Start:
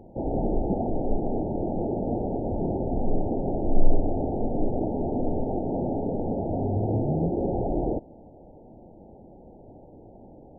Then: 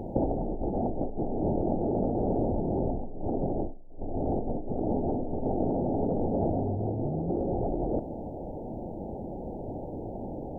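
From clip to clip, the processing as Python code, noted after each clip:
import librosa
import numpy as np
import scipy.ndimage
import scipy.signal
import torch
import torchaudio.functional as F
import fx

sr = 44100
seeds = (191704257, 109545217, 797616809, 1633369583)

y = fx.over_compress(x, sr, threshold_db=-33.0, ratio=-1.0)
y = F.gain(torch.from_numpy(y), 3.0).numpy()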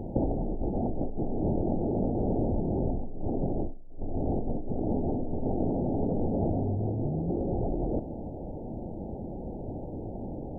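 y = fx.low_shelf(x, sr, hz=390.0, db=8.0)
y = F.gain(torch.from_numpy(y), -5.5).numpy()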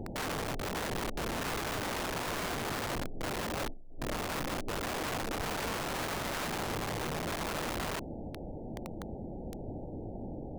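y = (np.mod(10.0 ** (26.5 / 20.0) * x + 1.0, 2.0) - 1.0) / 10.0 ** (26.5 / 20.0)
y = F.gain(torch.from_numpy(y), -4.0).numpy()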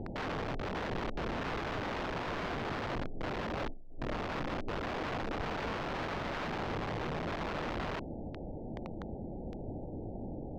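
y = fx.air_absorb(x, sr, metres=220.0)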